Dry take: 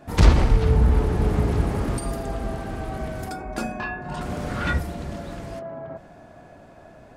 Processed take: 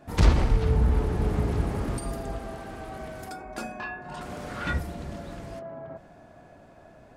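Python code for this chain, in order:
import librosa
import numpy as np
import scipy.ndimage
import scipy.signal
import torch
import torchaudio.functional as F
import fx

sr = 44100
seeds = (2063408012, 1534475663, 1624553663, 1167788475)

y = fx.low_shelf(x, sr, hz=250.0, db=-8.0, at=(2.38, 4.67))
y = y * librosa.db_to_amplitude(-4.5)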